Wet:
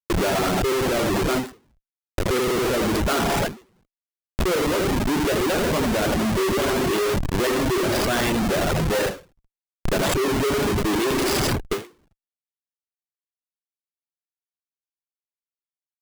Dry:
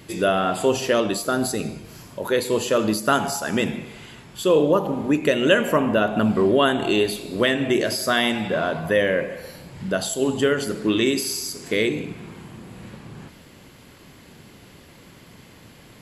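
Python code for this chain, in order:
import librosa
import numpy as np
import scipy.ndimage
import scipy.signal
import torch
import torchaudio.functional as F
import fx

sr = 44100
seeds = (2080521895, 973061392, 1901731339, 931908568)

p1 = fx.rider(x, sr, range_db=10, speed_s=0.5)
p2 = x + (p1 * 10.0 ** (-0.5 / 20.0))
p3 = fx.peak_eq(p2, sr, hz=380.0, db=6.5, octaves=0.39)
p4 = p3 + fx.echo_feedback(p3, sr, ms=82, feedback_pct=30, wet_db=-5, dry=0)
p5 = fx.schmitt(p4, sr, flips_db=-17.0)
p6 = fx.dereverb_blind(p5, sr, rt60_s=0.53)
p7 = fx.end_taper(p6, sr, db_per_s=180.0)
y = p7 * 10.0 ** (-6.0 / 20.0)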